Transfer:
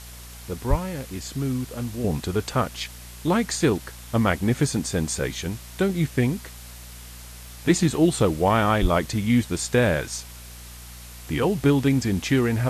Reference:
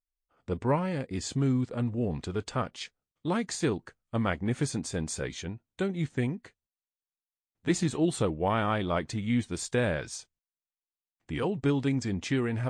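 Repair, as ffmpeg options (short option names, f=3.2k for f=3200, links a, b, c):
-filter_complex "[0:a]bandreject=f=59.9:t=h:w=4,bandreject=f=119.8:t=h:w=4,bandreject=f=179.7:t=h:w=4,bandreject=f=239.6:t=h:w=4,asplit=3[a][b][c];[a]afade=t=out:st=0.69:d=0.02[d];[b]highpass=f=140:w=0.5412,highpass=f=140:w=1.3066,afade=t=in:st=0.69:d=0.02,afade=t=out:st=0.81:d=0.02[e];[c]afade=t=in:st=0.81:d=0.02[f];[d][e][f]amix=inputs=3:normalize=0,asplit=3[g][h][i];[g]afade=t=out:st=8.81:d=0.02[j];[h]highpass=f=140:w=0.5412,highpass=f=140:w=1.3066,afade=t=in:st=8.81:d=0.02,afade=t=out:st=8.93:d=0.02[k];[i]afade=t=in:st=8.93:d=0.02[l];[j][k][l]amix=inputs=3:normalize=0,afwtdn=0.0071,asetnsamples=n=441:p=0,asendcmd='2.04 volume volume -7.5dB',volume=0dB"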